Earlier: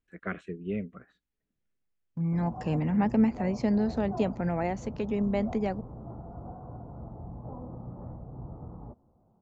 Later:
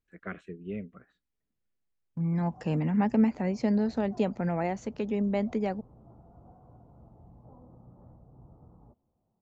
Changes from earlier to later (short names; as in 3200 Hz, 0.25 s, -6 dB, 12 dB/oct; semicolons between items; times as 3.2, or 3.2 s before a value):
first voice -4.0 dB; background -12.0 dB